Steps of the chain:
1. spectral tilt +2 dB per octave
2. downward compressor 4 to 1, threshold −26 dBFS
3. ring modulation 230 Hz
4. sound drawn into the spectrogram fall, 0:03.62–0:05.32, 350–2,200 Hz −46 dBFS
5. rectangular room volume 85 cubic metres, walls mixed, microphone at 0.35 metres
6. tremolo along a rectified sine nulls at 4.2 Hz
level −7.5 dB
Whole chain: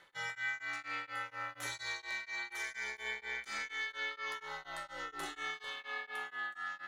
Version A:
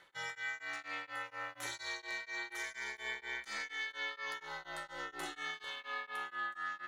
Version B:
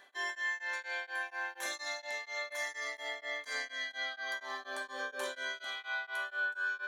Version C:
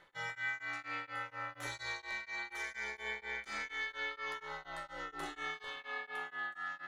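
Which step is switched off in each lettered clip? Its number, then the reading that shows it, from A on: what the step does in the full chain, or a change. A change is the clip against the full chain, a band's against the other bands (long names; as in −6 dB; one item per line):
5, 125 Hz band −2.5 dB
3, 500 Hz band +4.5 dB
1, 8 kHz band −5.5 dB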